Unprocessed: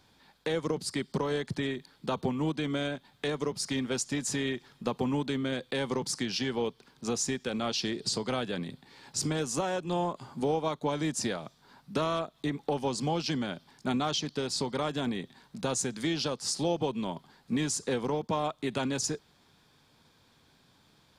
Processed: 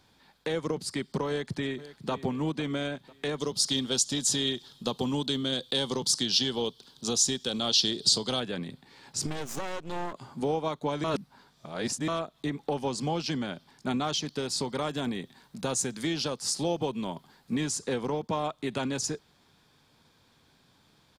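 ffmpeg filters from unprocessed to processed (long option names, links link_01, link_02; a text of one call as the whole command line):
ffmpeg -i in.wav -filter_complex "[0:a]asplit=2[link_01][link_02];[link_02]afade=type=in:start_time=1.28:duration=0.01,afade=type=out:start_time=2.12:duration=0.01,aecho=0:1:500|1000|1500|2000:0.16788|0.0755462|0.0339958|0.0152981[link_03];[link_01][link_03]amix=inputs=2:normalize=0,asettb=1/sr,asplit=3[link_04][link_05][link_06];[link_04]atrim=end=3.384[link_07];[link_05]atrim=start=3.38:end=8.4,asetpts=PTS-STARTPTS,afade=type=in:duration=0.004:curve=qsin,afade=type=out:start_time=5.016:duration=0.004:curve=qsin,highshelf=frequency=2800:width_type=q:width=3:gain=6.5[link_08];[link_06]atrim=start=8.396[link_09];[link_07][link_08]acrossfade=duration=0.004:curve1=hsin:curve2=qsin[link_10];[link_10][link_09]acrossfade=duration=0.004:curve1=qsin:curve2=hsin,asettb=1/sr,asplit=3[link_11][link_12][link_13];[link_11]atrim=end=9.264[link_14];[link_12]atrim=start=9.26:end=10.13,asetpts=PTS-STARTPTS,afade=type=in:duration=0.004:curve=qsin,afade=type=out:start_time=0.866:duration=0.004:curve=qsin,aeval=exprs='max(val(0),0)':channel_layout=same[link_15];[link_13]atrim=start=10.126[link_16];[link_14][link_15]acrossfade=duration=0.004:curve1=hsin:curve2=qsin[link_17];[link_17][link_16]acrossfade=duration=0.004:curve1=qsin:curve2=hsin,asettb=1/sr,asplit=3[link_18][link_19][link_20];[link_18]atrim=end=14.094[link_21];[link_19]atrim=start=14.09:end=17.55,asetpts=PTS-STARTPTS,afade=type=in:duration=0.004:curve=qsin,afade=type=out:start_time=3.456:duration=0.004:curve=qsin,highshelf=frequency=9600:gain=7.5[link_22];[link_20]atrim=start=17.546[link_23];[link_21][link_22]acrossfade=duration=0.004:curve1=hsin:curve2=qsin[link_24];[link_24][link_23]acrossfade=duration=0.004:curve1=qsin:curve2=hsin,asplit=3[link_25][link_26][link_27];[link_25]atrim=end=11.042[link_28];[link_26]atrim=start=11.038:end=12.082,asetpts=PTS-STARTPTS,areverse[link_29];[link_27]atrim=start=12.078[link_30];[link_28][link_29]acrossfade=duration=0.004:curve1=hsin:curve2=hsin[link_31];[link_31][link_30]acrossfade=duration=0.004:curve1=hsin:curve2=hsin" out.wav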